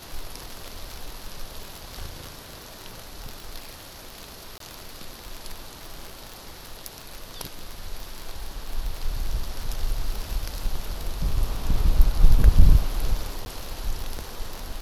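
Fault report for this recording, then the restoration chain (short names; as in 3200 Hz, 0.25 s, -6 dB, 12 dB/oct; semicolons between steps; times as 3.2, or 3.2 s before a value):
crackle 28/s -26 dBFS
4.58–4.6 gap 23 ms
13.45–13.46 gap 10 ms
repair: de-click; interpolate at 4.58, 23 ms; interpolate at 13.45, 10 ms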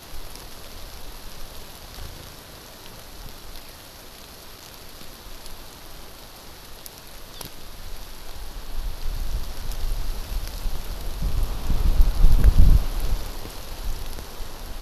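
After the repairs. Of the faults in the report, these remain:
none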